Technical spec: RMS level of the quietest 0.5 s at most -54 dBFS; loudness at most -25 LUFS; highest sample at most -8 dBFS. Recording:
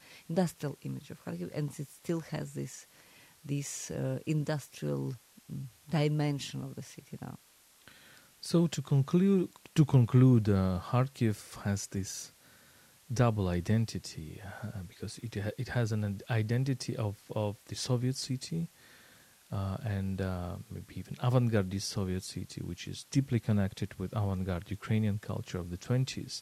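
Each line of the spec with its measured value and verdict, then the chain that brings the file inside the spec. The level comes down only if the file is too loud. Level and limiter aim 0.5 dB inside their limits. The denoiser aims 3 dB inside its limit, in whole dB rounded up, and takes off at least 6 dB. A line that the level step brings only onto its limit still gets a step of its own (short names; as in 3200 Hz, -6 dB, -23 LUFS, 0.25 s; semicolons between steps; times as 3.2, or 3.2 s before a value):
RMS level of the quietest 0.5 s -63 dBFS: OK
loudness -33.0 LUFS: OK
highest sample -12.5 dBFS: OK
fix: none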